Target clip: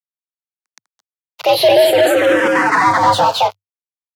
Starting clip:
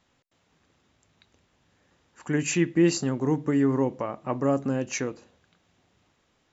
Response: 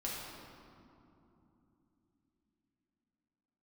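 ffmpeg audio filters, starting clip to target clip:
-filter_complex "[0:a]aecho=1:1:44|338|352:0.158|0.562|0.562,acrusher=bits=6:mix=0:aa=0.5,asplit=2[a][b];[b]highpass=f=720:p=1,volume=31dB,asoftclip=type=tanh:threshold=-7.5dB[c];[a][c]amix=inputs=2:normalize=0,lowpass=f=1.3k:p=1,volume=-6dB,afreqshift=63,asetrate=69237,aresample=44100,asplit=2[d][e];[e]afreqshift=-0.48[f];[d][f]amix=inputs=2:normalize=1,volume=6.5dB"

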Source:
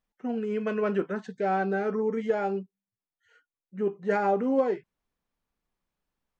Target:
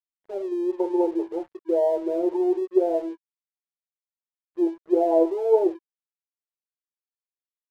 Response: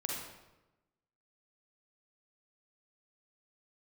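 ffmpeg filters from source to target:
-af "afftfilt=real='re*between(b*sr/4096,390,1200)':imag='im*between(b*sr/4096,390,1200)':win_size=4096:overlap=0.75,aeval=exprs='sgn(val(0))*max(abs(val(0))-0.00168,0)':c=same,asetrate=36603,aresample=44100,volume=6.5dB"

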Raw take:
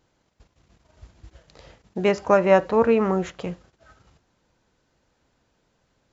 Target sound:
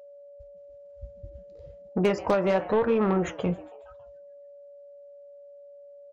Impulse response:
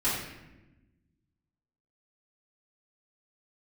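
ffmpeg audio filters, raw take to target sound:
-filter_complex "[0:a]afftdn=nr=26:nf=-39,acompressor=threshold=-22dB:ratio=10,asplit=2[a][b];[b]asplit=4[c][d][e][f];[c]adelay=138,afreqshift=130,volume=-21.5dB[g];[d]adelay=276,afreqshift=260,volume=-27dB[h];[e]adelay=414,afreqshift=390,volume=-32.5dB[i];[f]adelay=552,afreqshift=520,volume=-38dB[j];[g][h][i][j]amix=inputs=4:normalize=0[k];[a][k]amix=inputs=2:normalize=0,aeval=exprs='0.188*(cos(1*acos(clip(val(0)/0.188,-1,1)))-cos(1*PI/2))+0.0188*(cos(5*acos(clip(val(0)/0.188,-1,1)))-cos(5*PI/2))':c=same,flanger=delay=3.9:depth=8.1:regen=-66:speed=1:shape=triangular,aeval=exprs='val(0)+0.00282*sin(2*PI*570*n/s)':c=same,volume=5.5dB"

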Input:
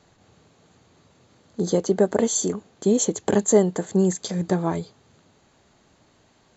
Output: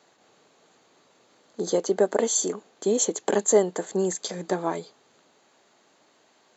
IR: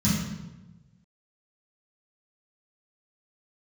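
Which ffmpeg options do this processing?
-af "highpass=350"

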